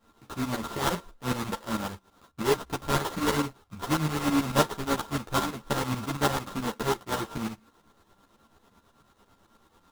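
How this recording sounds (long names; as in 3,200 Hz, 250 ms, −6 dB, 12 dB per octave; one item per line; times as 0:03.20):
a buzz of ramps at a fixed pitch in blocks of 32 samples
tremolo saw up 9.1 Hz, depth 80%
aliases and images of a low sample rate 2,400 Hz, jitter 20%
a shimmering, thickened sound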